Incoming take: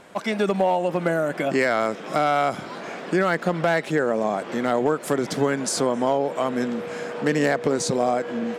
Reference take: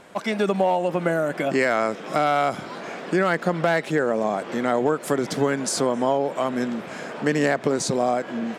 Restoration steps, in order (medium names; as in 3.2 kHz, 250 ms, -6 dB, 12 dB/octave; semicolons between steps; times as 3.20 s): clip repair -11.5 dBFS; band-stop 480 Hz, Q 30